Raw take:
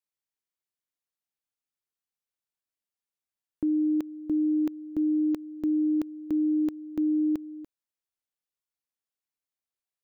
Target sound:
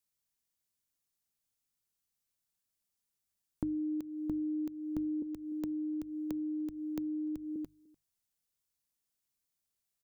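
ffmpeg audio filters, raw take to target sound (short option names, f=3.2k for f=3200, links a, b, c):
-filter_complex "[0:a]asettb=1/sr,asplit=3[a][b][c];[a]atrim=end=5.224[d];[b]atrim=start=5.22:end=7.56,asetpts=PTS-STARTPTS,afade=t=in:d=0.004:c=qsin,afade=t=out:st=2.336:d=0.004:c=qsin,acrossover=split=86|400[e][f][g];[e]acompressor=threshold=-56dB:ratio=4[h];[f]acompressor=threshold=-37dB:ratio=4[i];[g]acompressor=threshold=-44dB:ratio=4[j];[h][i][j]amix=inputs=3:normalize=0[k];[c]atrim=start=7.556[l];[d][k]acrossfade=d=0.004:c1=hsin:c2=qsin[m];[m][l]acrossfade=d=0.004:c1=qsin:c2=hsin,asplit=2[n][o];[o]adelay=297.4,volume=-26dB,highshelf=f=4k:g=-6.69[p];[n][p]amix=inputs=2:normalize=0,acompressor=threshold=-38dB:ratio=6,bass=f=250:g=10,treble=f=4k:g=8,bandreject=f=50:t=h:w=6,bandreject=f=100:t=h:w=6,bandreject=f=150:t=h:w=6"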